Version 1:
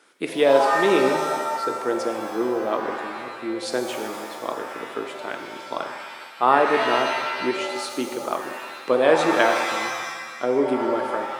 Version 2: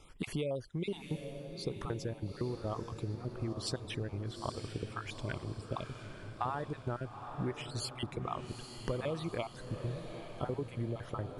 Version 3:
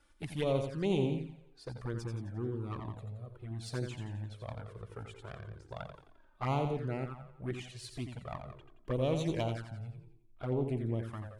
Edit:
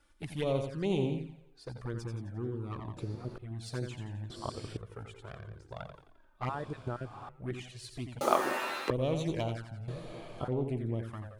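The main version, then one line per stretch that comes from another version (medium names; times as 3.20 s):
3
2.97–3.38 s: from 2
4.30–4.77 s: from 2
6.49–7.29 s: from 2
8.21–8.90 s: from 1
9.88–10.48 s: from 2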